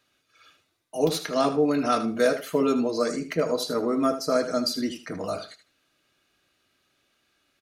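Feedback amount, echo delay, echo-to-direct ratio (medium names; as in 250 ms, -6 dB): 17%, 77 ms, -11.5 dB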